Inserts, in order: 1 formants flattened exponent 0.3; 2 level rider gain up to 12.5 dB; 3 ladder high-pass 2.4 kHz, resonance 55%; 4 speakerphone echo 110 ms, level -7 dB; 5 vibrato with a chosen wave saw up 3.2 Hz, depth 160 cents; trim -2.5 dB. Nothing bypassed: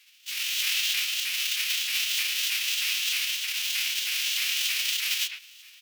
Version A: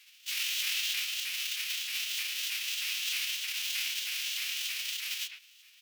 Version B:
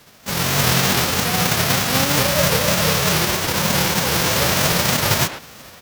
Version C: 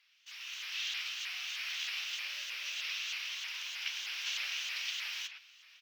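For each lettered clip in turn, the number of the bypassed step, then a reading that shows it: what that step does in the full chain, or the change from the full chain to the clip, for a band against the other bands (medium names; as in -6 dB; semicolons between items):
2, loudness change -6.5 LU; 3, 1 kHz band +21.5 dB; 1, 1 kHz band +7.5 dB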